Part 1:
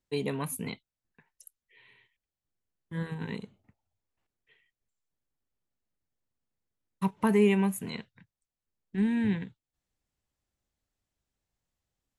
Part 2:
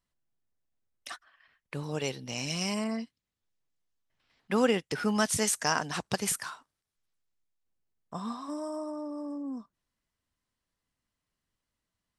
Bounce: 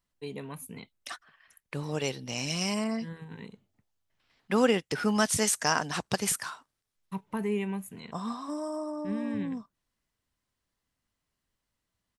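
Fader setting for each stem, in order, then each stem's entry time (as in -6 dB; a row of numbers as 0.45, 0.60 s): -7.5, +1.5 dB; 0.10, 0.00 s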